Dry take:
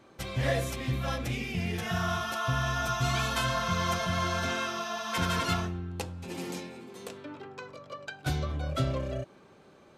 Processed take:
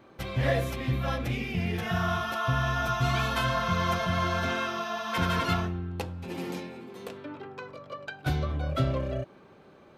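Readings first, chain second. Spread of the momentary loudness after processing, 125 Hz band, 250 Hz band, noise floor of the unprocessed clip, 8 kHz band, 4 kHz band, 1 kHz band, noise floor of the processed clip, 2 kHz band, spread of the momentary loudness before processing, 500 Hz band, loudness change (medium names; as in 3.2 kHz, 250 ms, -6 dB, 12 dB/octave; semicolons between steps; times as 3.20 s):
14 LU, +2.5 dB, +2.5 dB, -57 dBFS, -6.0 dB, -0.5 dB, +2.0 dB, -55 dBFS, +1.5 dB, 15 LU, +2.5 dB, +2.0 dB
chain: peaking EQ 7.7 kHz -10 dB 1.4 oct; trim +2.5 dB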